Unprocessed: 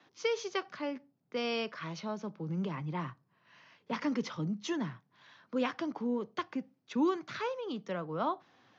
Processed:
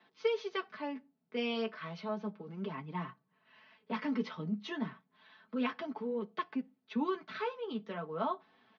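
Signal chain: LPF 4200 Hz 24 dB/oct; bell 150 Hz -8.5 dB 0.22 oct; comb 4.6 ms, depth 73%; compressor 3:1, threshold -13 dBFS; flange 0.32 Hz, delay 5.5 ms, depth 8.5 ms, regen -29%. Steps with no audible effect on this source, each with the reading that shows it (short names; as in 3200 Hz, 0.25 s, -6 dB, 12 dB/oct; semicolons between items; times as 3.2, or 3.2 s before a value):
compressor, threshold -13 dBFS: input peak -16.0 dBFS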